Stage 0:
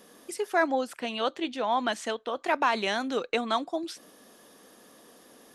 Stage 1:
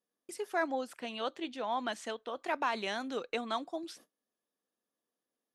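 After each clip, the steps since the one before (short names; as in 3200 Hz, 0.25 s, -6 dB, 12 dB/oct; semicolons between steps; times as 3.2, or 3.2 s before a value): gate -48 dBFS, range -29 dB; gain -7.5 dB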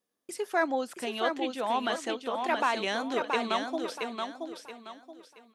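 feedback echo 0.676 s, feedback 31%, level -5 dB; gain +5 dB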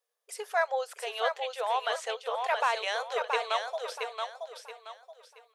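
brick-wall FIR high-pass 420 Hz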